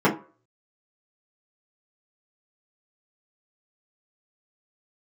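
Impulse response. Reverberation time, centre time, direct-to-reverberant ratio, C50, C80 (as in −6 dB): 0.40 s, 18 ms, −7.5 dB, 12.0 dB, 17.5 dB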